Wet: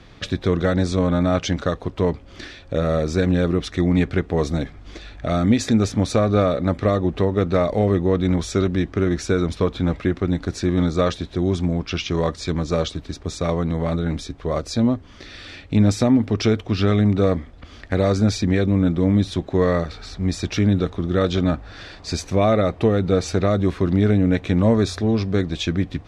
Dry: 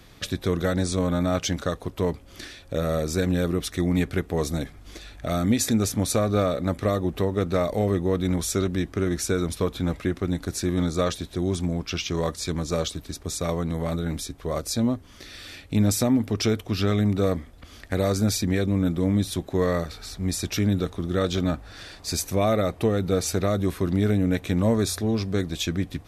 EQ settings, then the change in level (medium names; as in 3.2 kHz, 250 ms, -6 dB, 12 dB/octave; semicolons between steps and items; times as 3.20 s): distance through air 120 m; +5.0 dB